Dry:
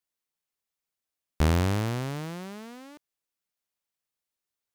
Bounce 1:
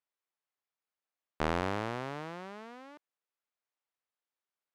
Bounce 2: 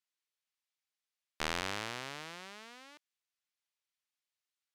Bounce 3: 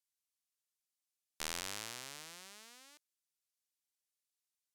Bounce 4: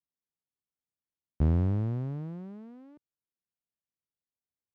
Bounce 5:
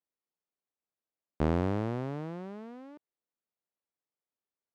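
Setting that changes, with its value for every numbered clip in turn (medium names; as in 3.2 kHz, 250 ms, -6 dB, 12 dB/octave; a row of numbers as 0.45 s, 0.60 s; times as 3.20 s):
band-pass filter, frequency: 1 kHz, 3 kHz, 8 kHz, 120 Hz, 390 Hz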